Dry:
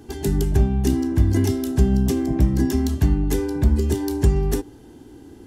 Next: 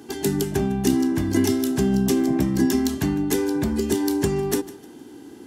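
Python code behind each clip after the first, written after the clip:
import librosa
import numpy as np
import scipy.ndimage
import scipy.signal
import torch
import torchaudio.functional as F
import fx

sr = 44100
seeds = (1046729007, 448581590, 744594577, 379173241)

y = scipy.signal.sosfilt(scipy.signal.butter(2, 220.0, 'highpass', fs=sr, output='sos'), x)
y = fx.peak_eq(y, sr, hz=560.0, db=-4.0, octaves=1.2)
y = fx.echo_feedback(y, sr, ms=153, feedback_pct=32, wet_db=-18)
y = F.gain(torch.from_numpy(y), 4.5).numpy()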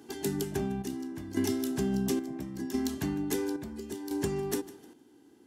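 y = fx.low_shelf(x, sr, hz=120.0, db=-3.5)
y = fx.chopper(y, sr, hz=0.73, depth_pct=60, duty_pct=60)
y = F.gain(torch.from_numpy(y), -8.5).numpy()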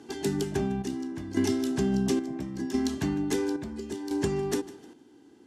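y = scipy.signal.sosfilt(scipy.signal.butter(2, 7800.0, 'lowpass', fs=sr, output='sos'), x)
y = F.gain(torch.from_numpy(y), 3.5).numpy()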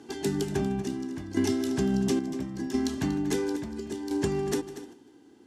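y = x + 10.0 ** (-13.5 / 20.0) * np.pad(x, (int(238 * sr / 1000.0), 0))[:len(x)]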